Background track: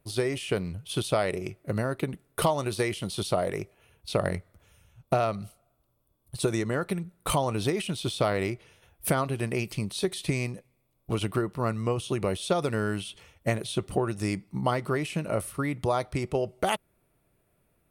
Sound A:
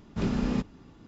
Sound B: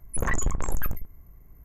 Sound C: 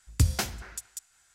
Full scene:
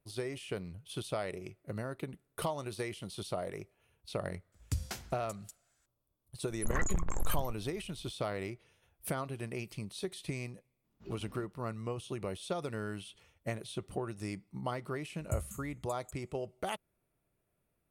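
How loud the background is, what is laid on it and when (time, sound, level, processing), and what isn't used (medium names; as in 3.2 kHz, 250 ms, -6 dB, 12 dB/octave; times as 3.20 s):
background track -10.5 dB
4.52 s: add C -12 dB
6.48 s: add B -7 dB
10.84 s: add A -9 dB + spectral noise reduction 18 dB
15.12 s: add C -13 dB + brick-wall FIR band-stop 240–6300 Hz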